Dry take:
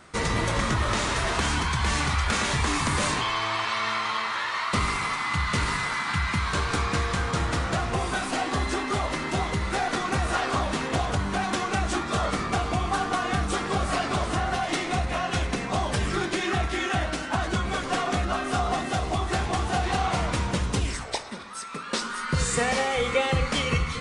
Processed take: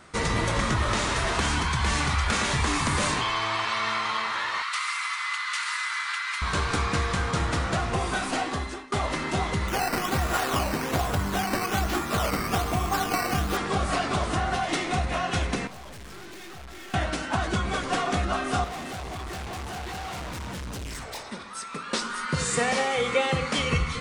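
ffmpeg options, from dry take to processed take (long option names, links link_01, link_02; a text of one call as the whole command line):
ffmpeg -i in.wav -filter_complex "[0:a]asettb=1/sr,asplit=3[link_01][link_02][link_03];[link_01]atrim=end=4.624[link_04];[link_02]atrim=start=4.62:end=6.42,asetpts=PTS-STARTPTS,afade=type=in:duration=0.004:curve=qsin,afade=type=out:start_time=1.796:duration=0.004:curve=qsin,highpass=frequency=1200:width=0.5412,highpass=frequency=1200:width=1.3066[link_05];[link_03]atrim=start=6.416[link_06];[link_04][link_05]acrossfade=duration=0.004:curve1=hsin:curve2=qsin[link_07];[link_07][link_06]acrossfade=duration=0.004:curve1=qsin:curve2=hsin,asettb=1/sr,asplit=3[link_08][link_09][link_10];[link_08]atrim=end=9.684[link_11];[link_09]atrim=start=9.68:end=13.57,asetpts=PTS-STARTPTS,afade=type=in:duration=0.004:curve=qsin,afade=type=out:start_time=3.886:duration=0.004:curve=qsin,acrusher=samples=9:mix=1:aa=0.000001:lfo=1:lforange=9:lforate=1.2[link_12];[link_10]atrim=start=13.566[link_13];[link_11][link_12]acrossfade=duration=0.004:curve1=hsin:curve2=qsin[link_14];[link_14][link_13]acrossfade=duration=0.004:curve1=qsin:curve2=hsin,asettb=1/sr,asplit=3[link_15][link_16][link_17];[link_15]atrim=end=15.674[link_18];[link_16]atrim=start=15.67:end=16.94,asetpts=PTS-STARTPTS,afade=type=in:duration=0.004:curve=qsin,afade=type=out:start_time=1.266:duration=0.004:curve=qsin,aeval=exprs='(tanh(126*val(0)+0.7)-tanh(0.7))/126':channel_layout=same[link_19];[link_17]atrim=start=16.936[link_20];[link_18][link_19]acrossfade=duration=0.004:curve1=hsin:curve2=qsin[link_21];[link_21][link_20]acrossfade=duration=0.004:curve1=qsin:curve2=hsin,asettb=1/sr,asplit=3[link_22][link_23][link_24];[link_22]atrim=end=18.644[link_25];[link_23]atrim=start=18.64:end=21.28,asetpts=PTS-STARTPTS,afade=type=in:duration=0.004:curve=qsin,afade=type=out:start_time=2.636:duration=0.004:curve=qsin,volume=33.5dB,asoftclip=hard,volume=-33.5dB[link_26];[link_24]atrim=start=21.276[link_27];[link_25][link_26]acrossfade=duration=0.004:curve1=hsin:curve2=qsin[link_28];[link_28][link_27]acrossfade=duration=0.004:curve1=qsin:curve2=hsin,asettb=1/sr,asplit=3[link_29][link_30][link_31];[link_29]atrim=end=22.264[link_32];[link_30]atrim=start=22.26:end=23.59,asetpts=PTS-STARTPTS,afade=type=in:duration=0.004:curve=qsin,afade=type=out:start_time=1.326:duration=0.004:curve=qsin,highpass=120[link_33];[link_31]atrim=start=23.586[link_34];[link_32][link_33]acrossfade=duration=0.004:curve1=hsin:curve2=qsin[link_35];[link_35][link_34]acrossfade=duration=0.004:curve1=qsin:curve2=hsin,asplit=2[link_36][link_37];[link_36]atrim=end=8.92,asetpts=PTS-STARTPTS,afade=type=out:start_time=8.37:duration=0.55:silence=0.0707946[link_38];[link_37]atrim=start=8.92,asetpts=PTS-STARTPTS,afade=type=in:duration=0.004:curve=hsin:silence=0.0707946[link_39];[link_38][link_39]concat=n=2:v=0:a=1" out.wav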